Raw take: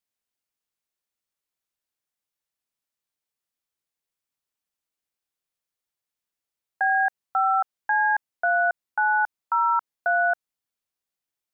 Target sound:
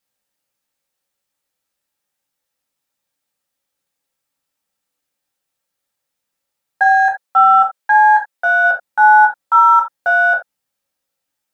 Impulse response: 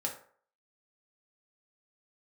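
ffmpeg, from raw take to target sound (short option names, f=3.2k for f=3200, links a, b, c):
-filter_complex "[0:a]asplit=3[a][b][c];[a]afade=t=out:st=6.89:d=0.02[d];[b]highpass=f=450:p=1,afade=t=in:st=6.89:d=0.02,afade=t=out:st=8.63:d=0.02[e];[c]afade=t=in:st=8.63:d=0.02[f];[d][e][f]amix=inputs=3:normalize=0,asplit=2[g][h];[h]asoftclip=type=tanh:threshold=-32dB,volume=-12dB[i];[g][i]amix=inputs=2:normalize=0[j];[1:a]atrim=start_sample=2205,atrim=end_sample=3969[k];[j][k]afir=irnorm=-1:irlink=0,volume=6.5dB"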